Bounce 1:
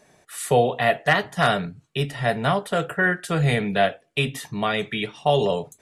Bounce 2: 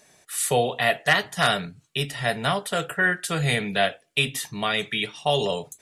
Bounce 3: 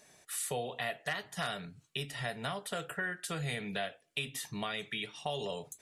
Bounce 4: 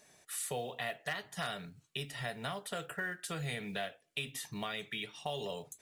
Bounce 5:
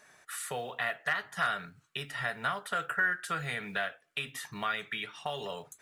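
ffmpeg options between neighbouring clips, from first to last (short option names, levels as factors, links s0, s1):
-af "highshelf=f=2100:g=11.5,volume=0.596"
-af "acompressor=threshold=0.0251:ratio=3,volume=0.596"
-af "acrusher=bits=7:mode=log:mix=0:aa=0.000001,volume=0.794"
-af "equalizer=f=1400:t=o:w=1.2:g=14.5,volume=0.841"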